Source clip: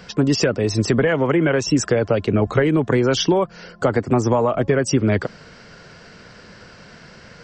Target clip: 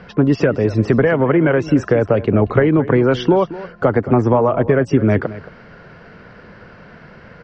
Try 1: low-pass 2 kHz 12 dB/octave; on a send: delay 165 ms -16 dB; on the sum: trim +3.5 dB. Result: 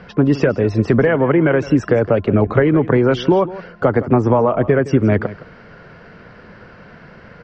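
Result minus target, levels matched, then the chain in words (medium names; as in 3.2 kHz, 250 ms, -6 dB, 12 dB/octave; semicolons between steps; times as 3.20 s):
echo 57 ms early
low-pass 2 kHz 12 dB/octave; on a send: delay 222 ms -16 dB; on the sum: trim +3.5 dB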